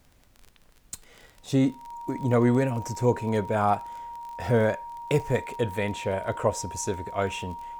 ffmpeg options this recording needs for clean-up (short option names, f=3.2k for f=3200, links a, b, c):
-af "adeclick=t=4,bandreject=f=940:w=30,agate=range=-21dB:threshold=-48dB"